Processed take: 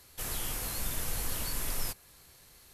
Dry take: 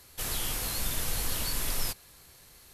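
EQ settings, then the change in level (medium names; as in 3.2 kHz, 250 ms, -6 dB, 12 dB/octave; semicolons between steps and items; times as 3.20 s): dynamic bell 3.9 kHz, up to -4 dB, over -50 dBFS, Q 1.2; -2.5 dB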